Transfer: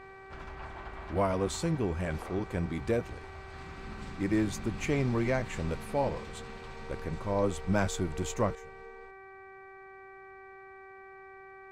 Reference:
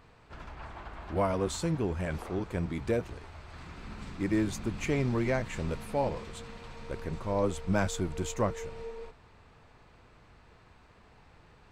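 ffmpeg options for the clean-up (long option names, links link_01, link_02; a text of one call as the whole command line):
ffmpeg -i in.wav -af "bandreject=frequency=385.4:width_type=h:width=4,bandreject=frequency=770.8:width_type=h:width=4,bandreject=frequency=1156.2:width_type=h:width=4,bandreject=frequency=1541.6:width_type=h:width=4,bandreject=frequency=1927:width_type=h:width=4,bandreject=frequency=2312.4:width_type=h:width=4,asetnsamples=nb_out_samples=441:pad=0,asendcmd='8.55 volume volume 10.5dB',volume=0dB" out.wav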